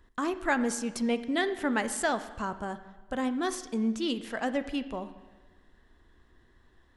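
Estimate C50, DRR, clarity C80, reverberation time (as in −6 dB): 13.0 dB, 11.0 dB, 14.5 dB, 1.3 s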